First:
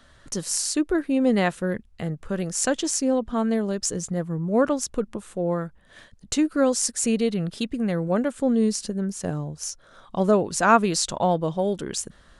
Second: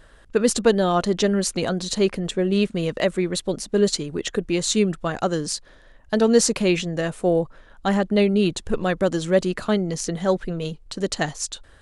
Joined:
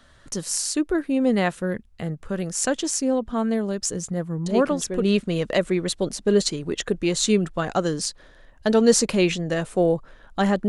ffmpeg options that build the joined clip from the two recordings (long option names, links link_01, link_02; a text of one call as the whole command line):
ffmpeg -i cue0.wav -i cue1.wav -filter_complex "[1:a]asplit=2[link_01][link_02];[0:a]apad=whole_dur=10.68,atrim=end=10.68,atrim=end=5.022[link_03];[link_02]atrim=start=2.488:end=8.15[link_04];[link_01]atrim=start=1.93:end=2.49,asetpts=PTS-STARTPTS,volume=-7.5dB,afade=type=in:duration=0.004:curve=hsin,afade=type=out:start_time=0.556:duration=0.004:curve=hsin,adelay=4460[link_05];[link_03][link_04]acrossfade=duration=0.004:curve1=hsin:curve2=hsin[link_06];[link_06][link_05]amix=inputs=2:normalize=0" out.wav